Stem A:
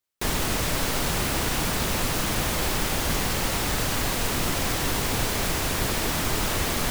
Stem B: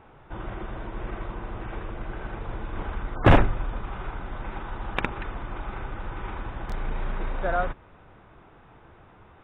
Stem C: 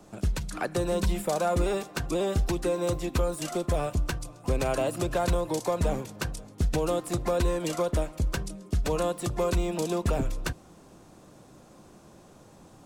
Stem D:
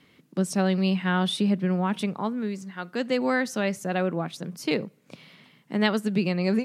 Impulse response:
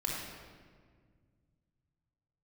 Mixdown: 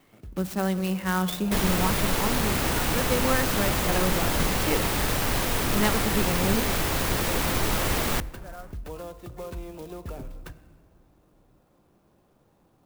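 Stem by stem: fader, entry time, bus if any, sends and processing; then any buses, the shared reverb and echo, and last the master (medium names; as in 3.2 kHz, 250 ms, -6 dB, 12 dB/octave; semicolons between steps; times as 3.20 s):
0.0 dB, 1.30 s, send -23.5 dB, none
-17.0 dB, 1.00 s, no send, none
-12.0 dB, 0.00 s, send -15.5 dB, low-pass 5.2 kHz 12 dB/octave; auto duck -14 dB, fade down 0.50 s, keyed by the fourth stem
-4.5 dB, 0.00 s, send -16 dB, peaking EQ 1.1 kHz +5.5 dB 0.77 oct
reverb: on, RT60 1.8 s, pre-delay 22 ms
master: wow and flutter 26 cents; sampling jitter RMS 0.041 ms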